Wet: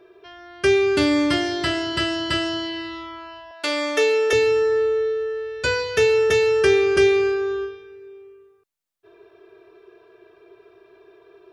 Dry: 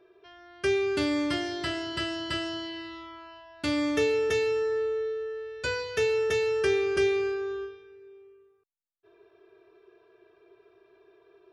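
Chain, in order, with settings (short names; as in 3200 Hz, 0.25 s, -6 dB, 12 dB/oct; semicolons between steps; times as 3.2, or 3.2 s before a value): 3.51–4.33 HPF 410 Hz 24 dB/oct; gain +8.5 dB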